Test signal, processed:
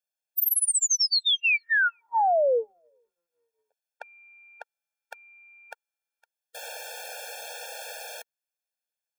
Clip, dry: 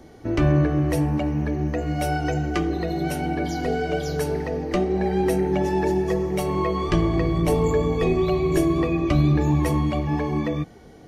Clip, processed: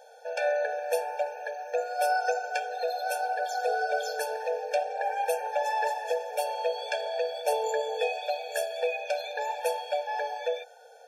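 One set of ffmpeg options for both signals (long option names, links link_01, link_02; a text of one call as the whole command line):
ffmpeg -i in.wav -af "asubboost=boost=2.5:cutoff=84,aeval=exprs='0.447*(cos(1*acos(clip(val(0)/0.447,-1,1)))-cos(1*PI/2))+0.0158*(cos(2*acos(clip(val(0)/0.447,-1,1)))-cos(2*PI/2))':channel_layout=same,afftfilt=real='re*eq(mod(floor(b*sr/1024/460),2),1)':imag='im*eq(mod(floor(b*sr/1024/460),2),1)':win_size=1024:overlap=0.75,volume=2dB" out.wav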